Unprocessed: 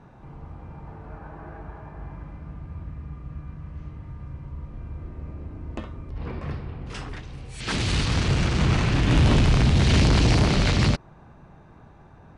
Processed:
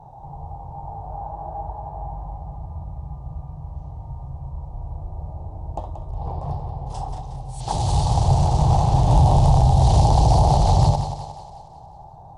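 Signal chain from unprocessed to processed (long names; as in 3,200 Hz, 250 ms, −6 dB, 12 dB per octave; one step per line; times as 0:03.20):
drawn EQ curve 150 Hz 0 dB, 220 Hz −16 dB, 510 Hz −4 dB, 820 Hz +13 dB, 1,400 Hz −22 dB, 2,300 Hz −25 dB, 3,500 Hz −11 dB, 11,000 Hz +1 dB
echo with a time of its own for lows and highs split 390 Hz, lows 101 ms, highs 181 ms, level −9 dB
boost into a limiter +10.5 dB
level −6 dB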